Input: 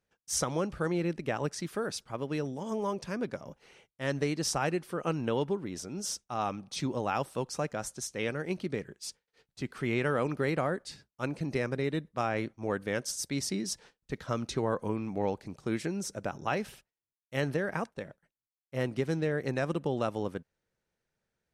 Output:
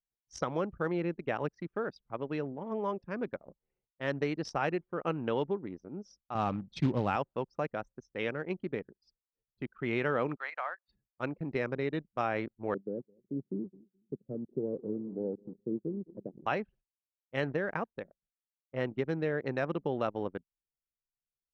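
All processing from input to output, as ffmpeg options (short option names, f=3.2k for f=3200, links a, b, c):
-filter_complex "[0:a]asettb=1/sr,asplit=3[a][b][c];[a]atrim=end=6.354[d];[b]atrim=start=6.35:end=7.16,asetpts=PTS-STARTPTS,afade=t=in:d=0.004:c=qsin,afade=t=out:st=0.806:d=0.004:c=qsin,bass=f=250:g=12,treble=f=4k:g=1,acrusher=bits=5:mode=log:mix=0:aa=0.000001[e];[c]atrim=start=7.156[f];[d][e]acrossfade=d=0.004:c1=hsin:c2=qsin[g];[g][f]acrossfade=d=0.004:c1=qsin:c2=hsin,asettb=1/sr,asplit=3[h][i][j];[h]atrim=end=10.364[k];[i]atrim=start=10.36:end=10.89,asetpts=PTS-STARTPTS,afade=t=in:d=0.004:c=qsin,afade=t=out:st=0.526:d=0.004:c=qsin,acrossover=split=3800[l][m];[m]acompressor=threshold=-53dB:ratio=4:attack=1:release=60[n];[l][n]amix=inputs=2:normalize=0,highpass=f=800:w=0.5412,highpass=f=800:w=1.3066,highshelf=f=11k:g=-9.5[o];[j]atrim=start=10.886[p];[k][o]acrossfade=d=0.004:c1=hsin:c2=qsin[q];[q][p]acrossfade=d=0.004:c1=qsin:c2=hsin,asettb=1/sr,asplit=3[r][s][t];[r]atrim=end=12.744[u];[s]atrim=start=12.74:end=16.46,asetpts=PTS-STARTPTS,afade=t=in:d=0.004:c=qsin,afade=t=out:st=3.716:d=0.004:c=qsin,asuperpass=centerf=250:order=8:qfactor=0.68,aecho=1:1:212|424|636|848:0.168|0.0705|0.0296|0.0124,atrim=end_sample=164052[v];[t]atrim=start=16.456[w];[u][v]acrossfade=d=0.004:c1=hsin:c2=qsin[x];[x][w]acrossfade=d=0.004:c1=qsin:c2=hsin,lowpass=3.6k,anlmdn=1,lowshelf=f=170:g=-7.5"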